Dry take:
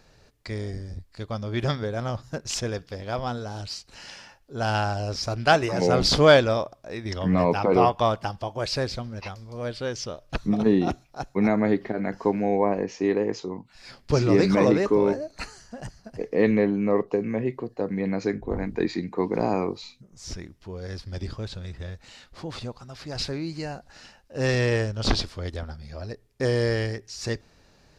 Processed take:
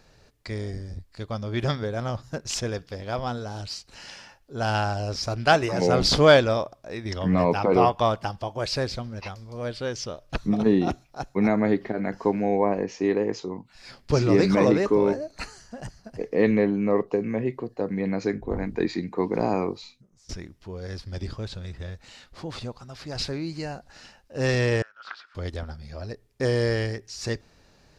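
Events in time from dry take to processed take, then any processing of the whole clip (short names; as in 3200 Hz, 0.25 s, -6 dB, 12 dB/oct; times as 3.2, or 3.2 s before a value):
19.68–20.29 fade out linear, to -22 dB
24.82–25.35 ladder band-pass 1500 Hz, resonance 75%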